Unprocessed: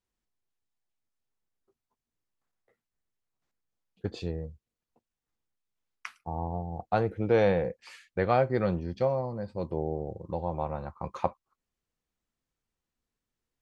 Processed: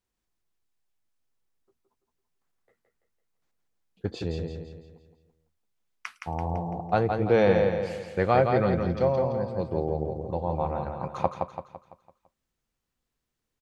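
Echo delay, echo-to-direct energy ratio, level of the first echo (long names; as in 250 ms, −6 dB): 168 ms, −4.0 dB, −5.0 dB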